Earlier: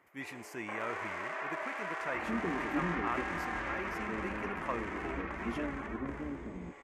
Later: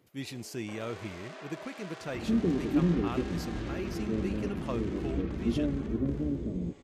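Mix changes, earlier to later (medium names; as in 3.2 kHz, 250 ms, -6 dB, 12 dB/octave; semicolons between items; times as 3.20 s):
speech +6.0 dB; second sound +8.0 dB; master: add graphic EQ 125/1000/2000/4000 Hz +7/-9/-12/+10 dB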